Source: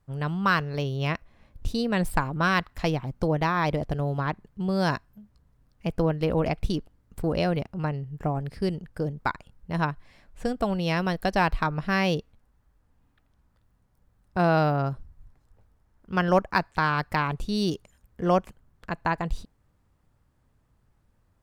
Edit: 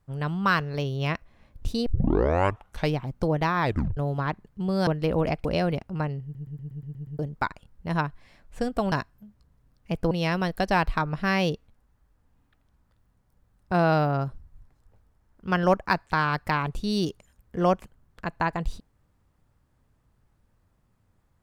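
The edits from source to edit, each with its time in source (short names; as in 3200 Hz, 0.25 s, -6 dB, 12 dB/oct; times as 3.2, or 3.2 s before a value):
1.86 tape start 1.10 s
3.62 tape stop 0.35 s
4.87–6.06 move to 10.76
6.64–7.29 cut
8.07 stutter in place 0.12 s, 8 plays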